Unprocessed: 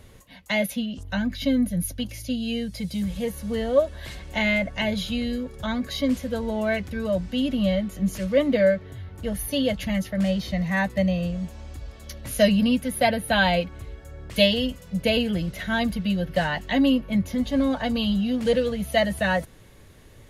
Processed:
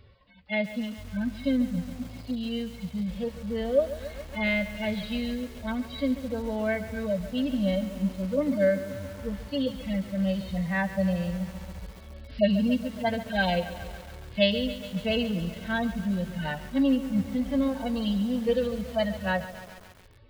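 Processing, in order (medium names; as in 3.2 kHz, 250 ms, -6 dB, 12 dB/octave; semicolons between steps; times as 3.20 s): harmonic-percussive separation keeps harmonic; resampled via 11.025 kHz; bit-crushed delay 139 ms, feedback 80%, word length 6-bit, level -13 dB; trim -3.5 dB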